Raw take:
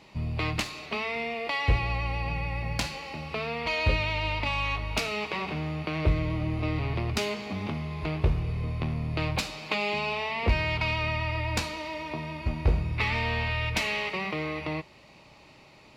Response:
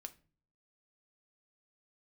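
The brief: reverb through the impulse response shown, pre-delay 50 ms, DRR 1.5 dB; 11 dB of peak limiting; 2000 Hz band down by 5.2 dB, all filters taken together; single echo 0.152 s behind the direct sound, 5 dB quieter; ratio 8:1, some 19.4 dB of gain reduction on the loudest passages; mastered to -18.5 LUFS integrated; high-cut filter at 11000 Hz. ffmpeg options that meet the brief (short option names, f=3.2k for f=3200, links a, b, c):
-filter_complex "[0:a]lowpass=11k,equalizer=f=2k:t=o:g=-6.5,acompressor=threshold=-39dB:ratio=8,alimiter=level_in=11.5dB:limit=-24dB:level=0:latency=1,volume=-11.5dB,aecho=1:1:152:0.562,asplit=2[a][b];[1:a]atrim=start_sample=2205,adelay=50[c];[b][c]afir=irnorm=-1:irlink=0,volume=4dB[d];[a][d]amix=inputs=2:normalize=0,volume=22.5dB"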